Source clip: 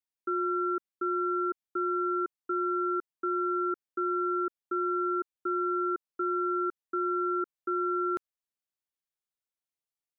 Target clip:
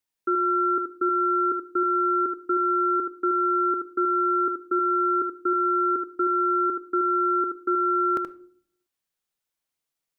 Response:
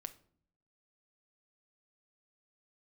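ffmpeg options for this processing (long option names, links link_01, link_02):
-filter_complex "[0:a]asplit=2[link_01][link_02];[1:a]atrim=start_sample=2205,adelay=77[link_03];[link_02][link_03]afir=irnorm=-1:irlink=0,volume=-1.5dB[link_04];[link_01][link_04]amix=inputs=2:normalize=0,volume=7dB"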